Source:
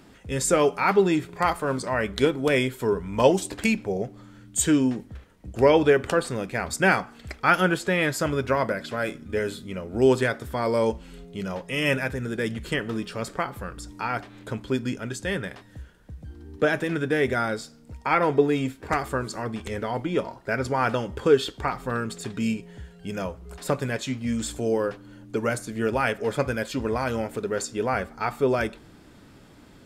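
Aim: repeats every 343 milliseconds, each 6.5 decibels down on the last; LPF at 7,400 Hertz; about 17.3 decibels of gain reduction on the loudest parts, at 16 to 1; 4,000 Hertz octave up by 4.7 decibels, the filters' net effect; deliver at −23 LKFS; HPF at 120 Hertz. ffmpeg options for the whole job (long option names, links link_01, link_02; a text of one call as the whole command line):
ffmpeg -i in.wav -af "highpass=120,lowpass=7400,equalizer=frequency=4000:width_type=o:gain=6.5,acompressor=threshold=-30dB:ratio=16,aecho=1:1:343|686|1029|1372|1715|2058:0.473|0.222|0.105|0.0491|0.0231|0.0109,volume=12dB" out.wav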